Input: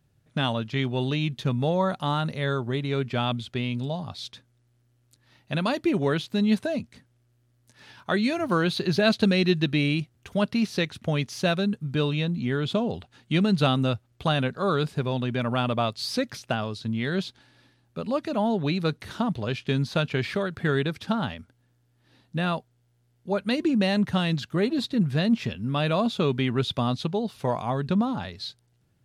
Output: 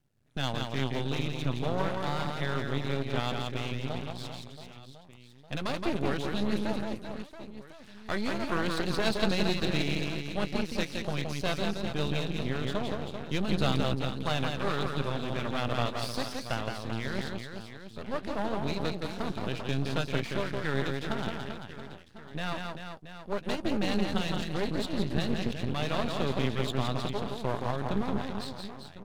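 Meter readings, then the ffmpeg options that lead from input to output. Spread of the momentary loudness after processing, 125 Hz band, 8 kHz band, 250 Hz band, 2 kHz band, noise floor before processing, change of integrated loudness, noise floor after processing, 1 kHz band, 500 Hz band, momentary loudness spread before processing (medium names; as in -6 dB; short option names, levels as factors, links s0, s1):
13 LU, -6.0 dB, -1.0 dB, -7.5 dB, -4.0 dB, -67 dBFS, -6.0 dB, -49 dBFS, -4.5 dB, -5.5 dB, 8 LU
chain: -filter_complex "[0:a]asplit=2[s0][s1];[s1]adelay=15,volume=0.2[s2];[s0][s2]amix=inputs=2:normalize=0,aecho=1:1:170|391|678.3|1052|1537:0.631|0.398|0.251|0.158|0.1,aeval=exprs='max(val(0),0)':c=same,volume=0.631"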